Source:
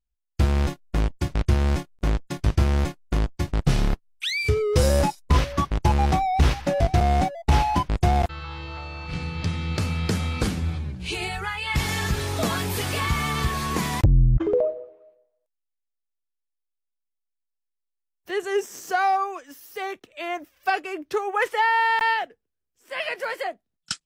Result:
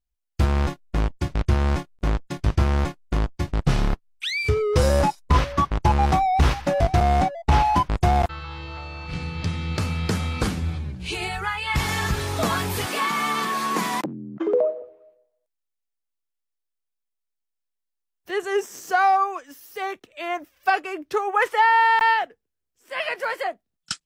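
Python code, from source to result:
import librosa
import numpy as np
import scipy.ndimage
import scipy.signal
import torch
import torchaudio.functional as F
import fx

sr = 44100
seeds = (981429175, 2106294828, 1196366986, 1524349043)

y = fx.high_shelf(x, sr, hz=8100.0, db=-6.0, at=(0.45, 6.03))
y = fx.high_shelf(y, sr, hz=9200.0, db=-10.0, at=(7.22, 7.65))
y = fx.steep_highpass(y, sr, hz=180.0, slope=48, at=(12.86, 14.82))
y = fx.dynamic_eq(y, sr, hz=1100.0, q=1.1, threshold_db=-36.0, ratio=4.0, max_db=5)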